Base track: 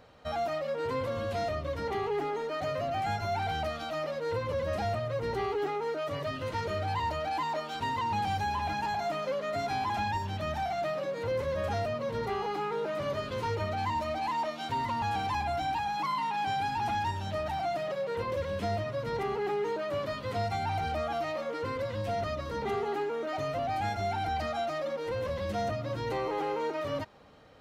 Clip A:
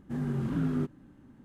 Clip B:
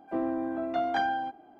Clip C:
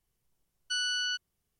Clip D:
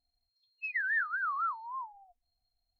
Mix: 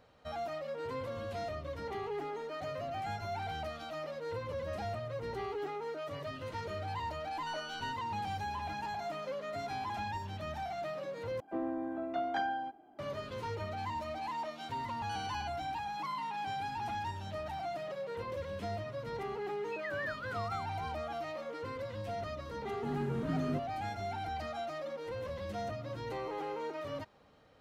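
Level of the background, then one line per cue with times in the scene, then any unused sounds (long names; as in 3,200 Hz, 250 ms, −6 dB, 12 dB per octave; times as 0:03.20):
base track −7 dB
0:06.76: mix in C −10.5 dB + RIAA equalisation playback
0:11.40: overwrite with B −6 dB
0:14.32: mix in C −17.5 dB + buffer that repeats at 0:00.67
0:19.09: mix in D −9.5 dB
0:22.73: mix in A −5.5 dB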